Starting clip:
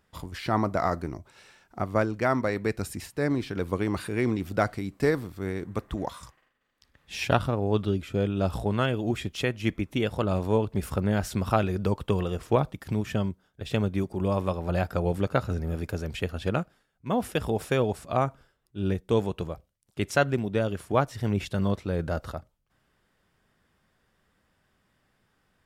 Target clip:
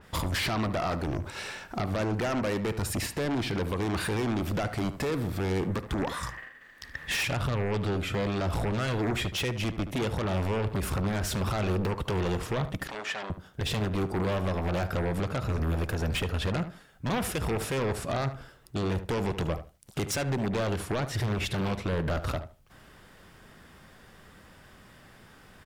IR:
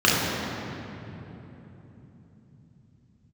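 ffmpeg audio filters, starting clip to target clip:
-filter_complex "[0:a]asettb=1/sr,asplit=3[a][b][c];[a]atrim=end=6.074[d];[b]atrim=start=6.07:end=7.21,asetpts=PTS-STARTPTS,afade=t=in:d=0.004:c=qsin,afade=t=out:st=1.136:d=0.004:c=qsin,equalizer=f=1.8k:w=4.1:g=14.5[e];[c]atrim=start=7.206[f];[d][e]acrossfade=d=0.004:c1=hsin:c2=qsin[g];[g][f]acrossfade=d=0.004:c1=qsin:c2=hsin,alimiter=level_in=6dB:limit=-24dB:level=0:latency=1:release=332,volume=-6dB,aeval=exprs='0.0316*(cos(1*acos(clip(val(0)/0.0316,-1,1)))-cos(1*PI/2))+0.0126*(cos(5*acos(clip(val(0)/0.0316,-1,1)))-cos(5*PI/2))':c=same,asettb=1/sr,asplit=3[h][i][j];[h]atrim=end=12.874[k];[i]atrim=start=12.87:end=13.3,asetpts=PTS-STARTPTS,afade=t=in:d=0.004:c=qsin,afade=t=out:st=0.426:d=0.004:c=qsin,highpass=570,lowpass=6.7k[l];[j]atrim=start=13.296[m];[k][l]acrossfade=d=0.004:c1=hsin:c2=qsin[n];[n][m]acrossfade=d=0.004:c1=qsin:c2=hsin,asplit=2[o][p];[p]adelay=74,lowpass=f=2.3k:p=1,volume=-11dB,asplit=2[q][r];[r]adelay=74,lowpass=f=2.3k:p=1,volume=0.2,asplit=2[s][t];[t]adelay=74,lowpass=f=2.3k:p=1,volume=0.2[u];[o][q][s][u]amix=inputs=4:normalize=0,adynamicequalizer=threshold=0.00158:dfrequency=4200:dqfactor=0.7:tfrequency=4200:tqfactor=0.7:attack=5:release=100:ratio=0.375:range=1.5:mode=cutabove:tftype=highshelf,volume=7dB"

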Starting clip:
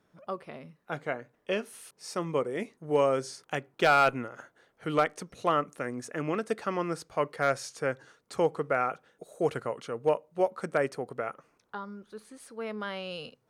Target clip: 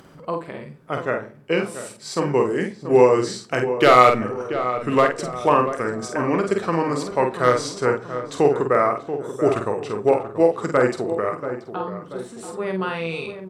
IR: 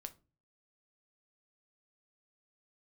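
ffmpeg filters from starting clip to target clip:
-filter_complex "[0:a]acompressor=mode=upward:threshold=-48dB:ratio=2.5,asetrate=39289,aresample=44100,atempo=1.12246,asplit=2[a][b];[b]adelay=48,volume=-5.5dB[c];[a][c]amix=inputs=2:normalize=0,asplit=2[d][e];[e]adelay=684,lowpass=f=1.4k:p=1,volume=-10dB,asplit=2[f][g];[g]adelay=684,lowpass=f=1.4k:p=1,volume=0.51,asplit=2[h][i];[i]adelay=684,lowpass=f=1.4k:p=1,volume=0.51,asplit=2[j][k];[k]adelay=684,lowpass=f=1.4k:p=1,volume=0.51,asplit=2[l][m];[m]adelay=684,lowpass=f=1.4k:p=1,volume=0.51,asplit=2[n][o];[o]adelay=684,lowpass=f=1.4k:p=1,volume=0.51[p];[d][f][h][j][l][n][p]amix=inputs=7:normalize=0,asplit=2[q][r];[1:a]atrim=start_sample=2205,asetrate=26901,aresample=44100[s];[r][s]afir=irnorm=-1:irlink=0,volume=3.5dB[t];[q][t]amix=inputs=2:normalize=0,volume=2dB"

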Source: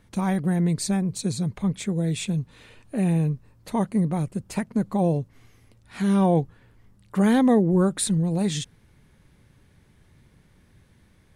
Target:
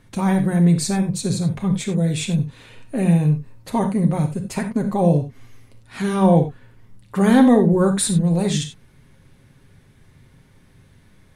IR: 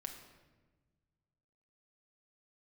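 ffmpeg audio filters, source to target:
-filter_complex "[1:a]atrim=start_sample=2205,atrim=end_sample=3087,asetrate=30870,aresample=44100[a];[0:a][a]afir=irnorm=-1:irlink=0,volume=6.5dB"

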